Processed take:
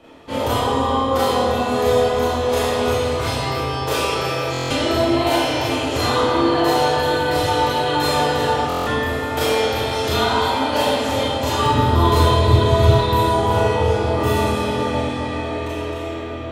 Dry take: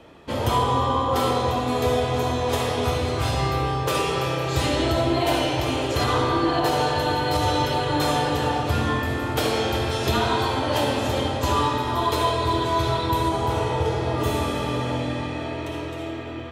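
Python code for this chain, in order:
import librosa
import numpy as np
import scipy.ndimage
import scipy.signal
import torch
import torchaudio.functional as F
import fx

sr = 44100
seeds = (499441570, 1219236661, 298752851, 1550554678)

y = fx.peak_eq(x, sr, hz=100.0, db=fx.steps((0.0, -2.0), (11.66, 13.0), (12.94, 3.5)), octaves=2.4)
y = fx.rev_schroeder(y, sr, rt60_s=0.38, comb_ms=26, drr_db=-5.0)
y = fx.buffer_glitch(y, sr, at_s=(4.52, 8.68), block=1024, repeats=7)
y = y * 10.0 ** (-2.0 / 20.0)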